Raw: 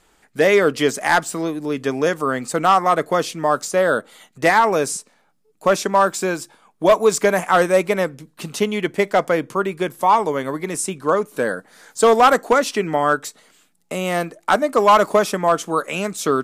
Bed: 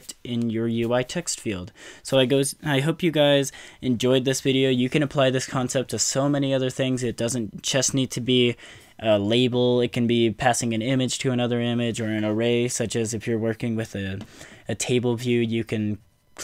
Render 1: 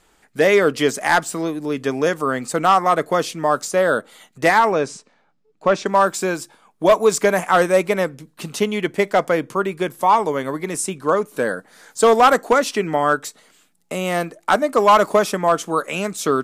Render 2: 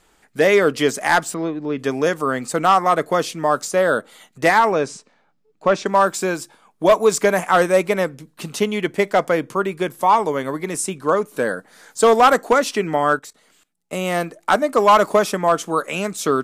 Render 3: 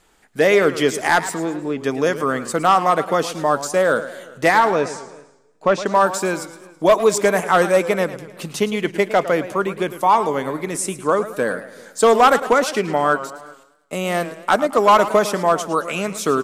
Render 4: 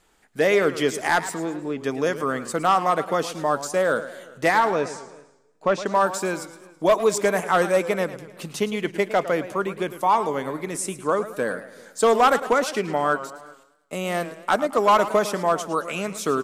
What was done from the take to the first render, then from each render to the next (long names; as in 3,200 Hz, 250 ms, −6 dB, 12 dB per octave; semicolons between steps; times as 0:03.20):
0:04.72–0:05.86: high-frequency loss of the air 120 metres
0:01.34–0:01.79: high-frequency loss of the air 210 metres; 0:13.19–0:13.93: output level in coarse steps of 19 dB
slap from a distant wall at 66 metres, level −24 dB; feedback echo with a swinging delay time 109 ms, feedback 45%, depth 142 cents, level −13.5 dB
level −4.5 dB